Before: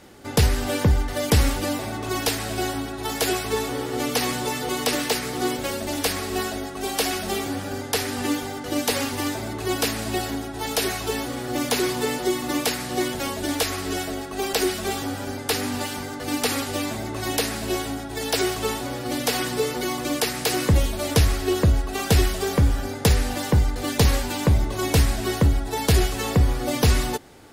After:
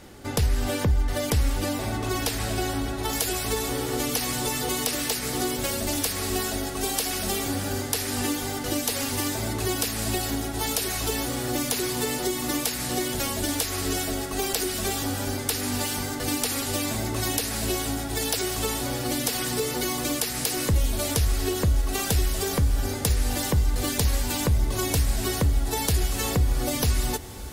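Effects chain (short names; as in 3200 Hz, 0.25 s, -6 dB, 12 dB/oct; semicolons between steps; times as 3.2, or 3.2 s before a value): high shelf 4700 Hz +2.5 dB, from 3.13 s +10 dB; compressor 6:1, threshold -24 dBFS, peak gain reduction 11.5 dB; low shelf 96 Hz +9.5 dB; diffused feedback echo 1.755 s, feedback 49%, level -15.5 dB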